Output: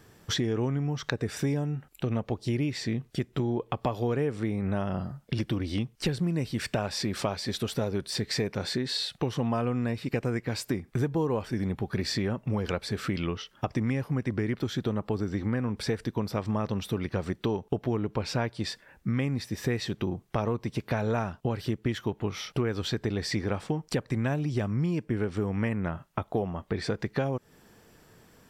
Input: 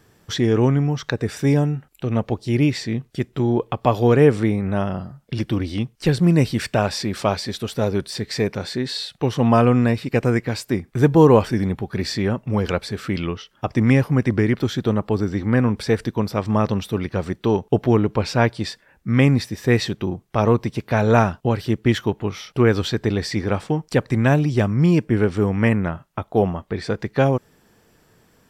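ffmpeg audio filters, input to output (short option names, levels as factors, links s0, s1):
-af "acompressor=threshold=0.0501:ratio=6"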